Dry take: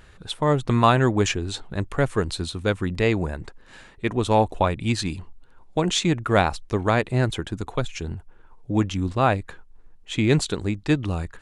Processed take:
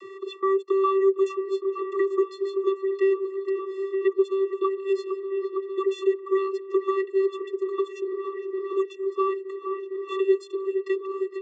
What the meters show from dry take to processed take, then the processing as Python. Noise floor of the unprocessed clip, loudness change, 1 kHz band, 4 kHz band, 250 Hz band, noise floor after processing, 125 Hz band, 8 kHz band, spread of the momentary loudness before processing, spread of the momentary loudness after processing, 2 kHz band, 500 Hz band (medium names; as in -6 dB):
-51 dBFS, -3.0 dB, -6.5 dB, under -15 dB, -5.0 dB, -43 dBFS, under -40 dB, under -20 dB, 11 LU, 8 LU, -11.5 dB, +3.0 dB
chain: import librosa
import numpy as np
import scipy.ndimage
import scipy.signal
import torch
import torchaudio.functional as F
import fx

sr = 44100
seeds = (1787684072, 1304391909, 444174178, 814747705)

p1 = fx.level_steps(x, sr, step_db=21)
p2 = x + (p1 * 10.0 ** (2.0 / 20.0))
p3 = fx.vocoder(p2, sr, bands=32, carrier='square', carrier_hz=387.0)
p4 = fx.echo_wet_lowpass(p3, sr, ms=458, feedback_pct=79, hz=2500.0, wet_db=-13.5)
p5 = fx.band_squash(p4, sr, depth_pct=70)
y = p5 * 10.0 ** (-6.0 / 20.0)